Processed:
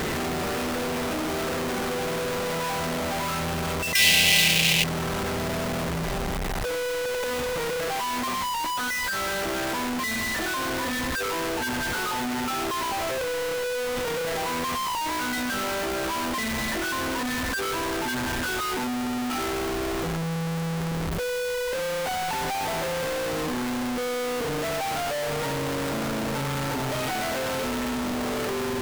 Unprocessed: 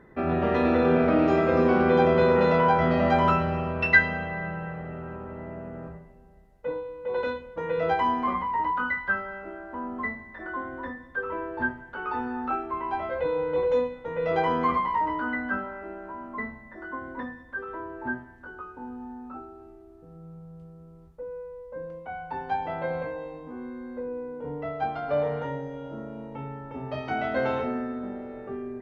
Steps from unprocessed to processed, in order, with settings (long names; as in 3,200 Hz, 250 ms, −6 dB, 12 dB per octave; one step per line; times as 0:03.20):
sign of each sample alone
0:03.95–0:04.84: high shelf with overshoot 1,900 Hz +11.5 dB, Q 3